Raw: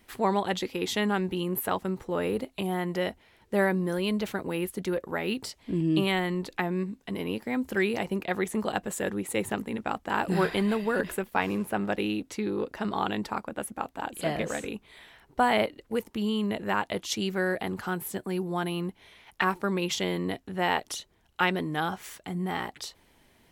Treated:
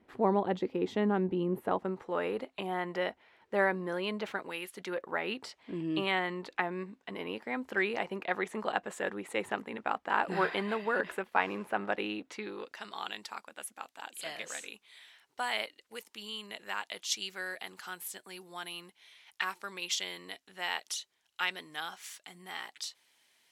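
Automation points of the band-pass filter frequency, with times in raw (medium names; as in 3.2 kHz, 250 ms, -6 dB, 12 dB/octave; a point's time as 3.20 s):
band-pass filter, Q 0.57
1.66 s 360 Hz
2.06 s 1.2 kHz
4.29 s 1.2 kHz
4.60 s 3.5 kHz
5.04 s 1.3 kHz
12.28 s 1.3 kHz
12.86 s 5.5 kHz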